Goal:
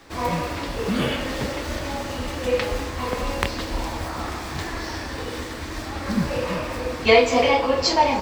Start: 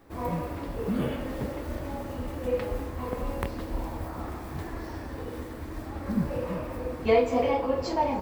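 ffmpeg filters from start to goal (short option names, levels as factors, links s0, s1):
-filter_complex "[0:a]acrossover=split=240|6400[s0][s1][s2];[s1]crystalizer=i=10:c=0[s3];[s0][s3][s2]amix=inputs=3:normalize=0,volume=1.58"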